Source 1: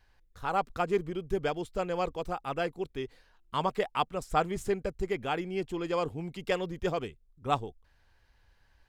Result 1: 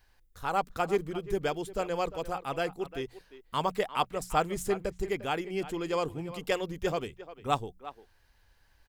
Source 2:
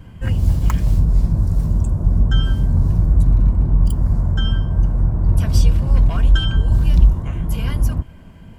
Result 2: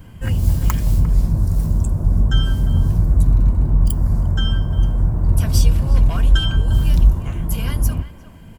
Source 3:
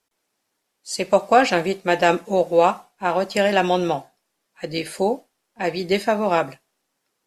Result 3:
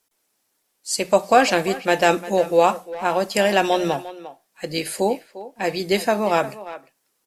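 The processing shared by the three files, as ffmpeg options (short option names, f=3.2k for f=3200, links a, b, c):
-filter_complex "[0:a]highshelf=f=7.6k:g=11.5,bandreject=f=60:t=h:w=6,bandreject=f=120:t=h:w=6,bandreject=f=180:t=h:w=6,asplit=2[a][b];[b]adelay=350,highpass=300,lowpass=3.4k,asoftclip=type=hard:threshold=-11.5dB,volume=-14dB[c];[a][c]amix=inputs=2:normalize=0"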